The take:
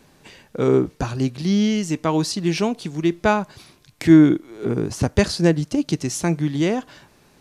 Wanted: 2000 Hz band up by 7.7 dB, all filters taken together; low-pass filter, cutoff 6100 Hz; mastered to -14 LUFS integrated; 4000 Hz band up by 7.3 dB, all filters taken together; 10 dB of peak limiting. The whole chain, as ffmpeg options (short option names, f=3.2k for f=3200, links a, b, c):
-af "lowpass=6.1k,equalizer=f=2k:t=o:g=8,equalizer=f=4k:t=o:g=8,volume=8dB,alimiter=limit=-2.5dB:level=0:latency=1"